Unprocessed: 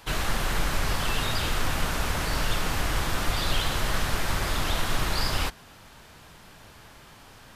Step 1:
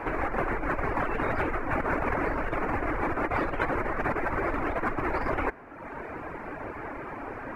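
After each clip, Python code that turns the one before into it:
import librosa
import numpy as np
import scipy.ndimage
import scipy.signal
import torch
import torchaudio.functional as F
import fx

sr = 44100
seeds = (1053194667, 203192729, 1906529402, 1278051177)

y = fx.dereverb_blind(x, sr, rt60_s=0.83)
y = fx.curve_eq(y, sr, hz=(190.0, 290.0, 2300.0, 3300.0), db=(0, 13, 4, -23))
y = fx.over_compress(y, sr, threshold_db=-31.0, ratio=-1.0)
y = y * 10.0 ** (2.5 / 20.0)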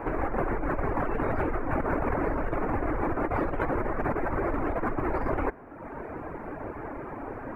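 y = fx.peak_eq(x, sr, hz=4200.0, db=-13.5, octaves=2.8)
y = y * 10.0 ** (2.5 / 20.0)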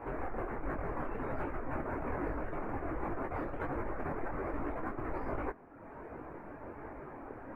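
y = fx.detune_double(x, sr, cents=45)
y = y * 10.0 ** (-5.5 / 20.0)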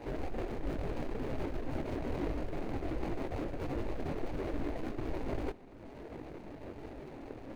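y = scipy.signal.medfilt(x, 41)
y = y + 10.0 ** (-21.5 / 20.0) * np.pad(y, (int(398 * sr / 1000.0), 0))[:len(y)]
y = y * 10.0 ** (2.5 / 20.0)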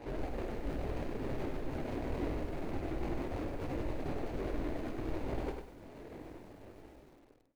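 y = fx.fade_out_tail(x, sr, length_s=1.73)
y = fx.doubler(y, sr, ms=49.0, db=-10.5)
y = fx.echo_crushed(y, sr, ms=99, feedback_pct=35, bits=10, wet_db=-6)
y = y * 10.0 ** (-2.0 / 20.0)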